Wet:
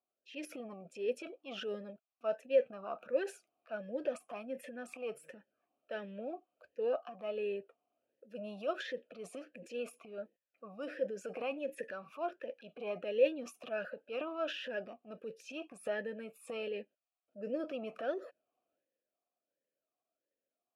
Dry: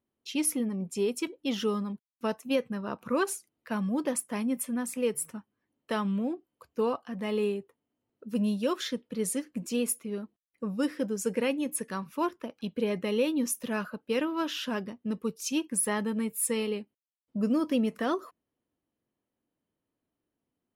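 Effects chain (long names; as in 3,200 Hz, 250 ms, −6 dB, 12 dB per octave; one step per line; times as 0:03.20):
transient designer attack −6 dB, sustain +8 dB
formant filter swept between two vowels a-e 1.4 Hz
level +5 dB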